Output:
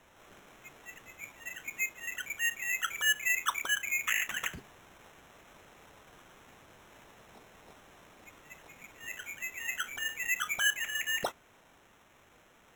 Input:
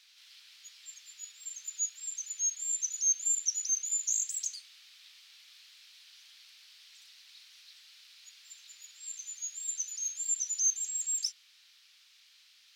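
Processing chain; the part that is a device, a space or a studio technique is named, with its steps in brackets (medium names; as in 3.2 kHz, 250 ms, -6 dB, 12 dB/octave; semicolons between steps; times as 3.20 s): crushed at another speed (playback speed 0.5×; sample-and-hold 19×; playback speed 2×)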